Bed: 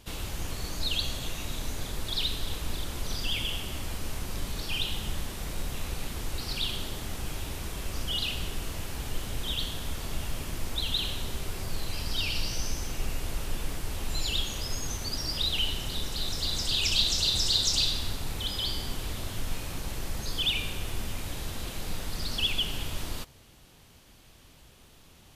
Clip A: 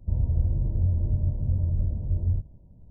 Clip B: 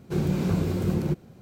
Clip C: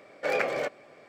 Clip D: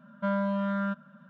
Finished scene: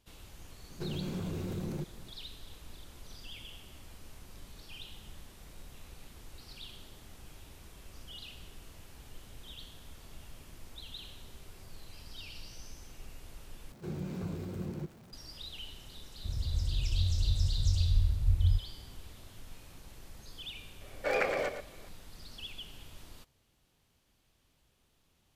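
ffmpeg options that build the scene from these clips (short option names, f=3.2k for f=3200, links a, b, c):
-filter_complex "[2:a]asplit=2[a][b];[0:a]volume=-16.5dB[c];[a]alimiter=level_in=0.5dB:limit=-24dB:level=0:latency=1:release=52,volume=-0.5dB[d];[b]aeval=exprs='val(0)+0.5*0.0119*sgn(val(0))':c=same[e];[1:a]asubboost=boost=9.5:cutoff=98[f];[3:a]aecho=1:1:115:0.355[g];[c]asplit=2[h][i];[h]atrim=end=13.724[j];[e]atrim=end=1.41,asetpts=PTS-STARTPTS,volume=-14dB[k];[i]atrim=start=15.126[l];[d]atrim=end=1.41,asetpts=PTS-STARTPTS,volume=-5.5dB,afade=t=in:d=0.004:c=hsin,afade=t=out:st=1.406:d=0.004:c=hsin,adelay=700[m];[f]atrim=end=2.9,asetpts=PTS-STARTPTS,volume=-12.5dB,afade=t=in:d=0.004:c=hsin,afade=t=out:st=2.896:d=0.004:c=hsin,adelay=16170[n];[g]atrim=end=1.08,asetpts=PTS-STARTPTS,volume=-3dB,afade=t=in:d=0.004:c=hsin,afade=t=out:st=1.076:d=0.004:c=hsin,adelay=20810[o];[j][k]acrossfade=d=0.004:c1=hsin:c2=hsin[p];[p][l]acrossfade=d=0.004:c1=hsin:c2=hsin[q];[q][m][n][o]amix=inputs=4:normalize=0"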